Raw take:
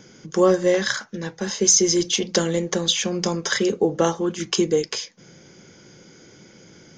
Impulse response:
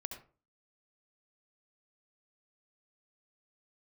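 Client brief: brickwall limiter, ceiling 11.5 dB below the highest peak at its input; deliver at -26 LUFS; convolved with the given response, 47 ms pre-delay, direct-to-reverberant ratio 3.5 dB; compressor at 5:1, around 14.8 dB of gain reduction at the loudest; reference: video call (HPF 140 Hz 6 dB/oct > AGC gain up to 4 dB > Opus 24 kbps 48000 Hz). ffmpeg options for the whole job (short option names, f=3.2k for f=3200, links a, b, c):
-filter_complex "[0:a]acompressor=threshold=-29dB:ratio=5,alimiter=limit=-22.5dB:level=0:latency=1,asplit=2[a][b];[1:a]atrim=start_sample=2205,adelay=47[c];[b][c]afir=irnorm=-1:irlink=0,volume=-1.5dB[d];[a][d]amix=inputs=2:normalize=0,highpass=f=140:p=1,dynaudnorm=m=4dB,volume=6.5dB" -ar 48000 -c:a libopus -b:a 24k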